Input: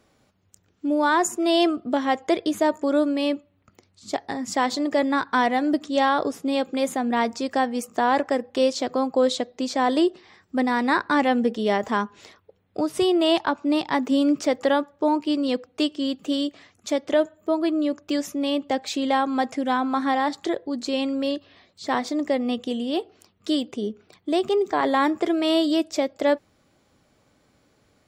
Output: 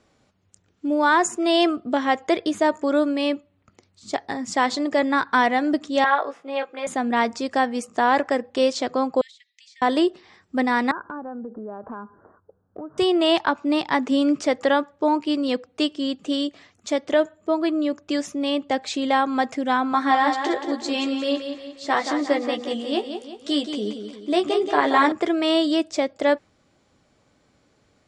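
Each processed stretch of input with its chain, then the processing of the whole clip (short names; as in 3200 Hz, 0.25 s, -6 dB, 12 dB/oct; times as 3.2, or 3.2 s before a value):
6.04–6.87 three-band isolator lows -22 dB, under 510 Hz, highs -22 dB, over 3000 Hz + doubler 18 ms -3.5 dB
9.21–9.82 Chebyshev high-pass 1800 Hz, order 8 + high shelf 6200 Hz -11 dB + compressor 8:1, threshold -48 dBFS
10.91–12.98 steep low-pass 1600 Hz 96 dB/oct + compressor 5:1, threshold -32 dBFS
19.92–25.12 bell 120 Hz -7.5 dB 1.5 oct + doubler 14 ms -4.5 dB + feedback echo 0.178 s, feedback 47%, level -7.5 dB
whole clip: steep low-pass 9500 Hz 36 dB/oct; dynamic EQ 1700 Hz, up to +4 dB, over -33 dBFS, Q 0.71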